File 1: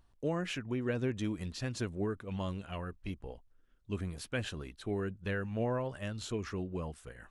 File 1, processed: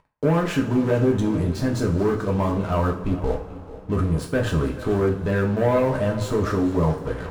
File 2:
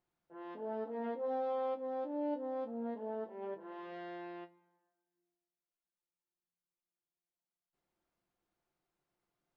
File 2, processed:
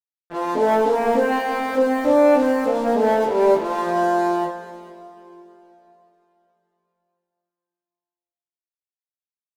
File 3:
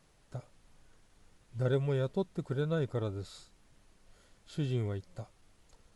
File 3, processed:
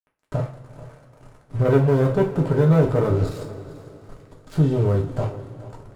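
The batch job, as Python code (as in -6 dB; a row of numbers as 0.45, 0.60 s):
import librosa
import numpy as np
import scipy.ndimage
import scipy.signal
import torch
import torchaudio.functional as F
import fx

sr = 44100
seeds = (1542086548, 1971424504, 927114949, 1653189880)

p1 = fx.high_shelf_res(x, sr, hz=1600.0, db=-11.5, q=1.5)
p2 = fx.leveller(p1, sr, passes=2)
p3 = fx.over_compress(p2, sr, threshold_db=-34.0, ratio=-1.0)
p4 = p2 + (p3 * librosa.db_to_amplitude(-2.5))
p5 = np.sign(p4) * np.maximum(np.abs(p4) - 10.0 ** (-50.0 / 20.0), 0.0)
p6 = p5 + 10.0 ** (-17.0 / 20.0) * np.pad(p5, (int(437 * sr / 1000.0), 0))[:len(p5)]
p7 = fx.rev_double_slope(p6, sr, seeds[0], early_s=0.34, late_s=3.6, knee_db=-20, drr_db=-0.5)
y = p7 * 10.0 ** (-22 / 20.0) / np.sqrt(np.mean(np.square(p7)))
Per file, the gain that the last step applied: +4.5, +11.5, +4.5 dB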